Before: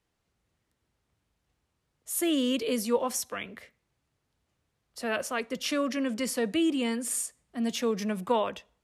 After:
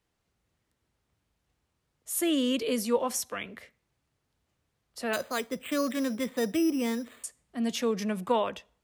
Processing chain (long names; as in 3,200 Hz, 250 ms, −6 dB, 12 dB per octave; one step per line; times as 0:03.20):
0:05.13–0:07.24: bad sample-rate conversion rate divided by 8×, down filtered, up hold